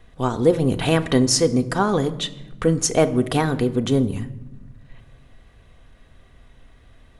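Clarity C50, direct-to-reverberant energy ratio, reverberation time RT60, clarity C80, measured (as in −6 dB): 16.0 dB, 7.0 dB, 1.0 s, 19.0 dB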